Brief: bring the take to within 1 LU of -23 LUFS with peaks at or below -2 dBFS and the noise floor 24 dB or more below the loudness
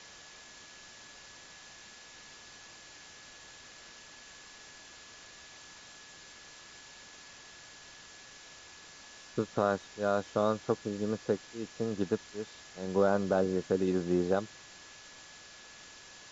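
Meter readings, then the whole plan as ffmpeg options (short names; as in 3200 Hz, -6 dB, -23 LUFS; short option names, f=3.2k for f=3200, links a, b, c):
steady tone 1700 Hz; tone level -58 dBFS; noise floor -53 dBFS; noise floor target -56 dBFS; loudness -32.0 LUFS; peak -13.5 dBFS; loudness target -23.0 LUFS
-> -af "bandreject=f=1.7k:w=30"
-af "afftdn=nr=6:nf=-53"
-af "volume=9dB"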